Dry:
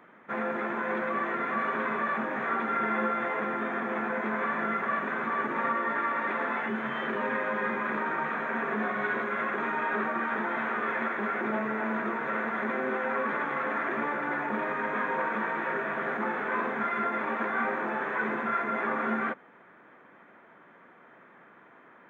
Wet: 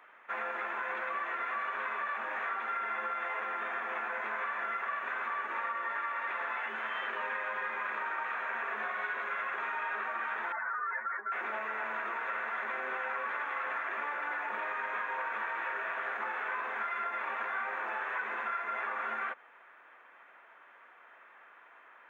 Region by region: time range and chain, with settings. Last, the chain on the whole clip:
10.52–11.32 spectral contrast raised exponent 2.5 + HPF 470 Hz
whole clip: HPF 800 Hz 12 dB/oct; bell 2700 Hz +6.5 dB 0.21 oct; compressor, threshold -32 dBFS

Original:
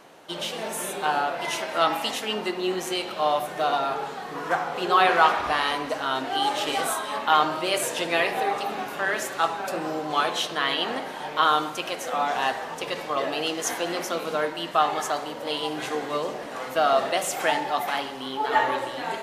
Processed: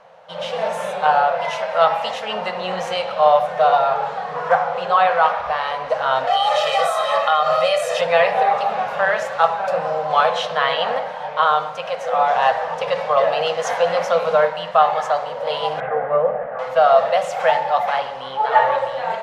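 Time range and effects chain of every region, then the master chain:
6.27–8.01 tilt +2 dB/oct + comb 1.6 ms, depth 87% + compressor, threshold -21 dBFS
15.8–16.59 LPF 1800 Hz 24 dB/oct + bell 990 Hz -11 dB 0.22 oct
whole clip: EQ curve 180 Hz 0 dB, 340 Hz -25 dB, 500 Hz +8 dB, 5400 Hz -7 dB, 12000 Hz -21 dB; AGC gain up to 8 dB; gain -1 dB

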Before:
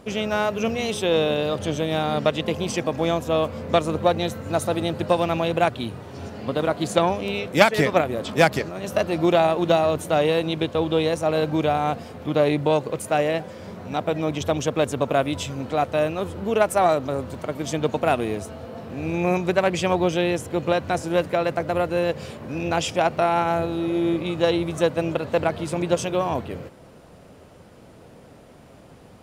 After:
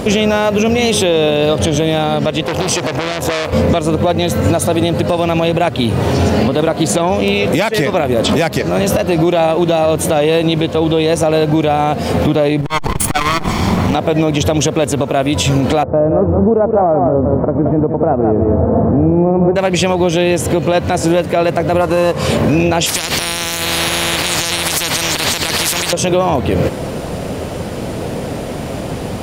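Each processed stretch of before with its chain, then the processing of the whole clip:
2.43–3.53 HPF 94 Hz + bell 220 Hz -10.5 dB 0.68 oct + core saturation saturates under 3000 Hz
12.61–13.95 minimum comb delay 0.91 ms + compressor 4:1, threshold -28 dBFS + core saturation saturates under 200 Hz
15.83–19.56 Bessel low-pass 810 Hz, order 6 + echo 0.171 s -8.5 dB
21.81–22.28 CVSD 64 kbps + bell 1100 Hz +11 dB 0.48 oct
22.86–25.93 compressor 2:1, threshold -25 dBFS + spectral compressor 10:1
whole clip: bell 1300 Hz -4 dB 0.94 oct; compressor 12:1, threshold -32 dBFS; maximiser +29 dB; gain -3 dB

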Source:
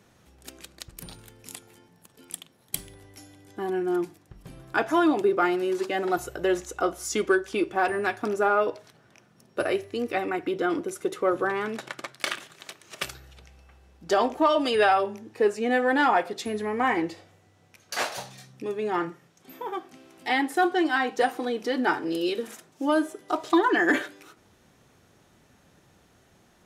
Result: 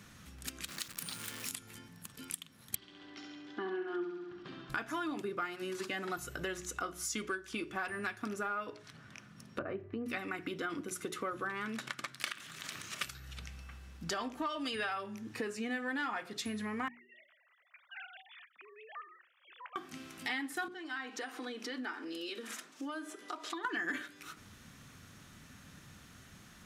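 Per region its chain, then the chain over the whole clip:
0.68–1.51 zero-crossing step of -40.5 dBFS + HPF 170 Hz + low shelf 440 Hz -6.5 dB
2.75–4.7 speaker cabinet 350–4100 Hz, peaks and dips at 360 Hz +9 dB, 510 Hz -5 dB, 2300 Hz -6 dB + flutter echo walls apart 11.6 m, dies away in 0.78 s
8.73–10.06 treble ducked by the level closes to 940 Hz, closed at -27 dBFS + high shelf 5900 Hz -5.5 dB
12.32–12.96 compressor 3:1, threshold -41 dBFS + transient shaper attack -2 dB, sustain +8 dB + modulation noise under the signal 32 dB
16.88–19.76 sine-wave speech + HPF 900 Hz + compressor 2.5:1, threshold -57 dBFS
20.68–23.65 high shelf 11000 Hz -12 dB + compressor 2:1, threshold -44 dBFS + HPF 260 Hz 24 dB/oct
whole clip: band shelf 550 Hz -10 dB; notches 60/120/180/240/300/360/420 Hz; compressor 4:1, threshold -44 dBFS; gain +6 dB

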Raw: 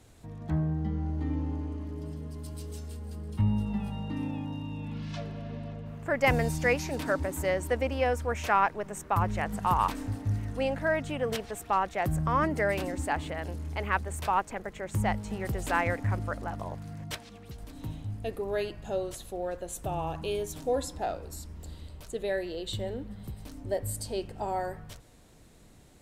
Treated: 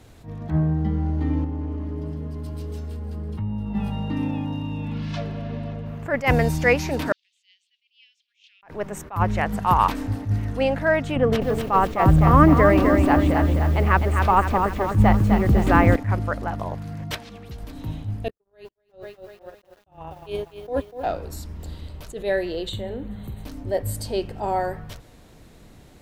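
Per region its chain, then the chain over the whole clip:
1.44–3.75 high shelf 2900 Hz -8.5 dB + compressor, threshold -32 dBFS
7.12–8.63 steep high-pass 3000 Hz 48 dB/oct + tape spacing loss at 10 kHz 44 dB
11.16–15.96 tilt -2 dB/oct + small resonant body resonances 290/1200 Hz, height 7 dB + lo-fi delay 0.255 s, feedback 55%, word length 8-bit, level -5 dB
18.28–21.06 gate -31 dBFS, range -57 dB + lo-fi delay 0.244 s, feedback 55%, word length 9-bit, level -10.5 dB
22.69–23.44 Butterworth band-stop 5200 Hz, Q 3 + compressor 2:1, threshold -37 dBFS + doubler 43 ms -12.5 dB
whole clip: bell 8500 Hz -7 dB 1 oct; attack slew limiter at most 200 dB/s; gain +8 dB

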